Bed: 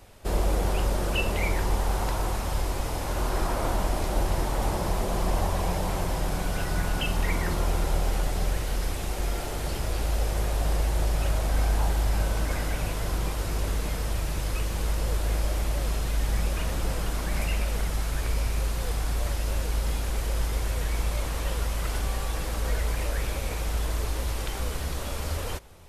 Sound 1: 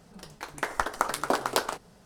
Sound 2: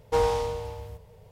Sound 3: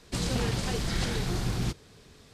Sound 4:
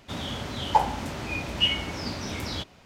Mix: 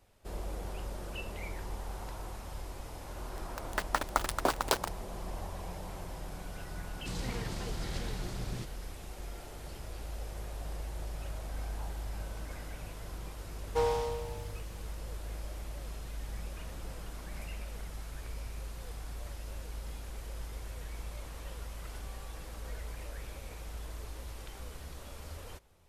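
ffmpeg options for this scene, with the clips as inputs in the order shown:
-filter_complex "[0:a]volume=0.188[s0];[1:a]aeval=exprs='val(0)*gte(abs(val(0)),0.0398)':c=same,atrim=end=2.05,asetpts=PTS-STARTPTS,volume=0.708,afade=t=in:d=0.004:c=hsin,afade=t=out:st=2.046:d=0.004:c=hsin,adelay=3150[s1];[3:a]atrim=end=2.33,asetpts=PTS-STARTPTS,volume=0.299,afade=t=in:d=0.004:c=hsin,afade=t=out:st=2.326:d=0.004:c=hsin,adelay=6930[s2];[2:a]atrim=end=1.31,asetpts=PTS-STARTPTS,volume=0.501,afade=t=in:d=0.004:c=hsin,afade=t=out:st=1.306:d=0.004:c=hsin,adelay=13630[s3];[s0][s1][s2][s3]amix=inputs=4:normalize=0"

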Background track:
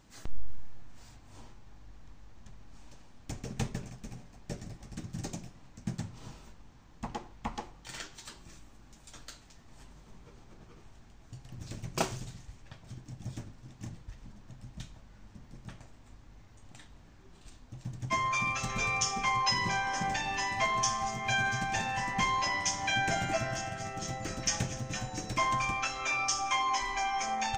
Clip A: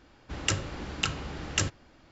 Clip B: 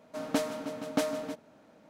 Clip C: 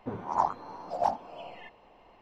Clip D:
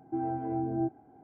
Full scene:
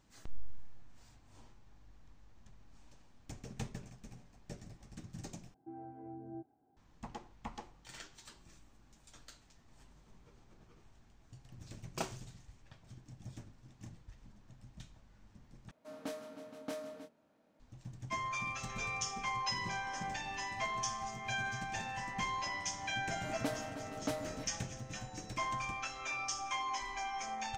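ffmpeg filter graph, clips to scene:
-filter_complex "[2:a]asplit=2[s0][s1];[0:a]volume=0.398[s2];[s0]asplit=2[s3][s4];[s4]adelay=26,volume=0.562[s5];[s3][s5]amix=inputs=2:normalize=0[s6];[s2]asplit=3[s7][s8][s9];[s7]atrim=end=5.544[s10];[4:a]atrim=end=1.23,asetpts=PTS-STARTPTS,volume=0.15[s11];[s8]atrim=start=6.766:end=15.714[s12];[s6]atrim=end=1.89,asetpts=PTS-STARTPTS,volume=0.188[s13];[s9]atrim=start=17.596[s14];[s1]atrim=end=1.89,asetpts=PTS-STARTPTS,volume=0.355,afade=t=in:d=0.004:c=hsin,afade=t=out:st=1.886:d=0.004:c=hsin,adelay=23100[s15];[s10][s11]acrossfade=d=0.004:c1=hsin:c2=hsin[s16];[s16][s12]acrossfade=d=0.004:c1=hsin:c2=hsin[s17];[s17][s13]acrossfade=d=0.004:c1=hsin:c2=hsin[s18];[s18][s14]acrossfade=d=0.004:c1=hsin:c2=hsin[s19];[s19][s15]amix=inputs=2:normalize=0"

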